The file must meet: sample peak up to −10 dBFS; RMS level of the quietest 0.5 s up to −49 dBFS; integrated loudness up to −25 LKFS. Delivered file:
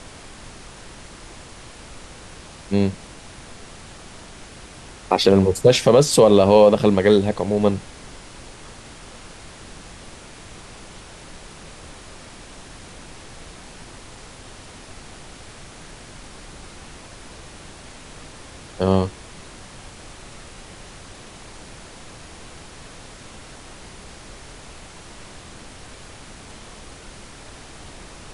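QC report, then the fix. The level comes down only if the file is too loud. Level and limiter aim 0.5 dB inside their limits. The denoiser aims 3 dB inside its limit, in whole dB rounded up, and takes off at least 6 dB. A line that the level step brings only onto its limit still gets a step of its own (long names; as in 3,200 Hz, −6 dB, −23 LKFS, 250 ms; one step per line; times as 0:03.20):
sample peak −2.0 dBFS: out of spec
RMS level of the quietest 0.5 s −41 dBFS: out of spec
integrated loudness −17.0 LKFS: out of spec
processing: level −8.5 dB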